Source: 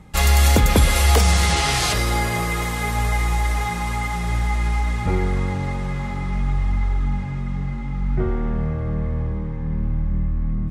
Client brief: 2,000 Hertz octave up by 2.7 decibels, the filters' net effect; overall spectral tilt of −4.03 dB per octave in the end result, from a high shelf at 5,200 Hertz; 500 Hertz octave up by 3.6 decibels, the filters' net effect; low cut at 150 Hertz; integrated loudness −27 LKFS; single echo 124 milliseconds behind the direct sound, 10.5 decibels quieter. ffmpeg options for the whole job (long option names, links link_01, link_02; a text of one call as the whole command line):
ffmpeg -i in.wav -af "highpass=150,equalizer=frequency=500:width_type=o:gain=4.5,equalizer=frequency=2000:width_type=o:gain=3.5,highshelf=frequency=5200:gain=-5.5,aecho=1:1:124:0.299,volume=-3.5dB" out.wav